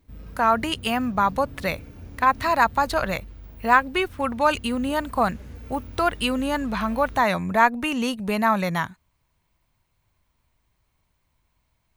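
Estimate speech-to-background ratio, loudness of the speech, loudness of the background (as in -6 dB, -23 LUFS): 19.5 dB, -23.0 LUFS, -42.5 LUFS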